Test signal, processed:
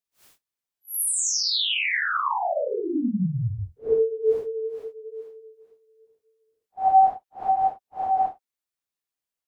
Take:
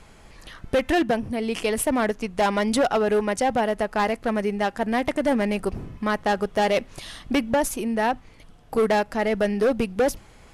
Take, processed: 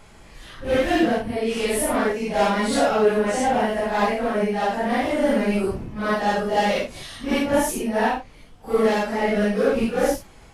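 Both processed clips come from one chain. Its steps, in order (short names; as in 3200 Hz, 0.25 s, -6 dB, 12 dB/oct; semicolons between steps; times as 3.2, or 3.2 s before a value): phase scrambler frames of 0.2 s; gain +2 dB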